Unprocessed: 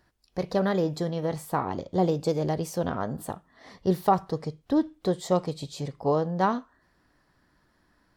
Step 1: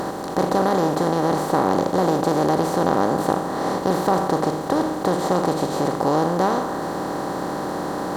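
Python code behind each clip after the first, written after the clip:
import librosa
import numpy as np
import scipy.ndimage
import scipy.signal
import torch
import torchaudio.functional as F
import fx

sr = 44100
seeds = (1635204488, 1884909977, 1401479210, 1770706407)

y = fx.bin_compress(x, sr, power=0.2)
y = F.gain(torch.from_numpy(y), -3.0).numpy()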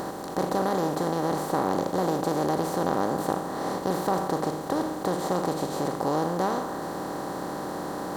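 y = fx.high_shelf(x, sr, hz=9700.0, db=7.0)
y = F.gain(torch.from_numpy(y), -6.5).numpy()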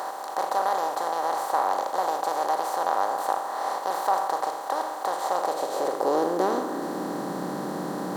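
y = fx.filter_sweep_highpass(x, sr, from_hz=780.0, to_hz=180.0, start_s=5.23, end_s=7.35, q=1.8)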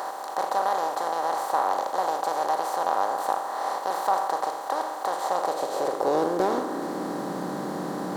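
y = fx.doppler_dist(x, sr, depth_ms=0.13)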